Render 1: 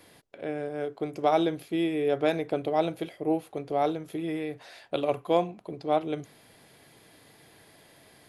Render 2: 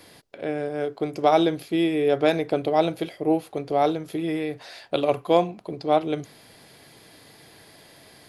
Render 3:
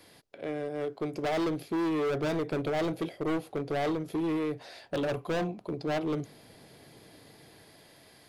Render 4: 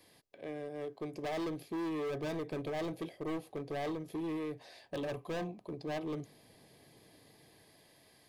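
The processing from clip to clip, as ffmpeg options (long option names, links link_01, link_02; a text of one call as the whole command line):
ffmpeg -i in.wav -af "equalizer=frequency=4700:width_type=o:width=0.54:gain=5,volume=5dB" out.wav
ffmpeg -i in.wav -filter_complex "[0:a]acrossover=split=700[link_01][link_02];[link_01]dynaudnorm=framelen=350:gausssize=7:maxgain=7dB[link_03];[link_03][link_02]amix=inputs=2:normalize=0,volume=20.5dB,asoftclip=hard,volume=-20.5dB,volume=-6.5dB" out.wav
ffmpeg -i in.wav -af "asuperstop=centerf=1400:order=8:qfactor=7.4,highshelf=frequency=9700:gain=4,volume=-7.5dB" out.wav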